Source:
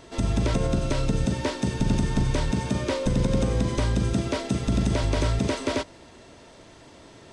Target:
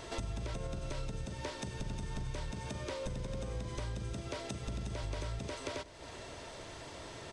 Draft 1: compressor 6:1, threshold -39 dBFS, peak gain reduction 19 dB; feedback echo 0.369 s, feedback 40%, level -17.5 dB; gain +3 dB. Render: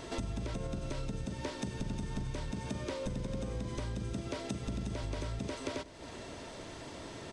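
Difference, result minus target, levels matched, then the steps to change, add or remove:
250 Hz band +4.0 dB
add after compressor: bell 240 Hz -7.5 dB 1.1 oct

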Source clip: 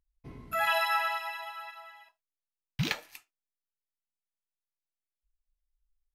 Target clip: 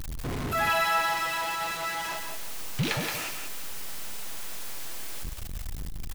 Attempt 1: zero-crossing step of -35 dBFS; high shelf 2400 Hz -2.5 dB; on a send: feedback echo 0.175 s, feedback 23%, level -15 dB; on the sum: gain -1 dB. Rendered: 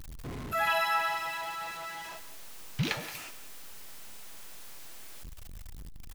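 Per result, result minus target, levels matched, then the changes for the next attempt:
echo-to-direct -9 dB; zero-crossing step: distortion -6 dB
change: feedback echo 0.175 s, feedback 23%, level -6 dB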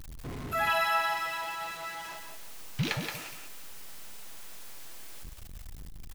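zero-crossing step: distortion -6 dB
change: zero-crossing step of -26 dBFS

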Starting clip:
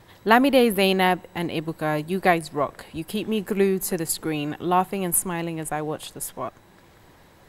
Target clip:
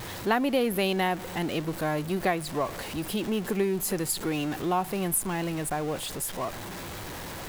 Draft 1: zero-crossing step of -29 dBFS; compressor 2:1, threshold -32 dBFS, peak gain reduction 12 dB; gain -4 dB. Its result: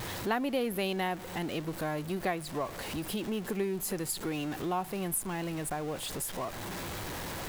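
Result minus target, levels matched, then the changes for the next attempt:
compressor: peak gain reduction +6 dB
change: compressor 2:1, threshold -20.5 dBFS, peak gain reduction 6.5 dB

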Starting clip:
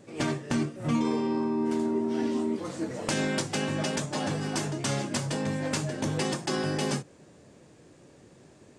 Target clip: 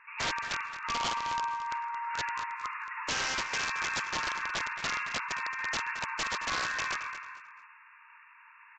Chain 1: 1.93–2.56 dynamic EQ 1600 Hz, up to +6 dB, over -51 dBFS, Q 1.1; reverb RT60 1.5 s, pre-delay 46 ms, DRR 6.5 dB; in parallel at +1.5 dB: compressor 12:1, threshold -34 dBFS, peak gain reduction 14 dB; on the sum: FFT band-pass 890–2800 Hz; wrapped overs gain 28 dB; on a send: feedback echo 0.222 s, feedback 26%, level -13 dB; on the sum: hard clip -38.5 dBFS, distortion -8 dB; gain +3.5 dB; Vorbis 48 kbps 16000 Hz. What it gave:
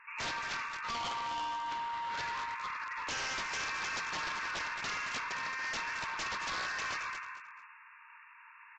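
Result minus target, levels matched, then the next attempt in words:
hard clip: distortion +22 dB
1.93–2.56 dynamic EQ 1600 Hz, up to +6 dB, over -51 dBFS, Q 1.1; reverb RT60 1.5 s, pre-delay 46 ms, DRR 6.5 dB; in parallel at +1.5 dB: compressor 12:1, threshold -34 dBFS, peak gain reduction 14 dB; on the sum: FFT band-pass 890–2800 Hz; wrapped overs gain 28 dB; on a send: feedback echo 0.222 s, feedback 26%, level -13 dB; on the sum: hard clip -29 dBFS, distortion -30 dB; gain +3.5 dB; Vorbis 48 kbps 16000 Hz

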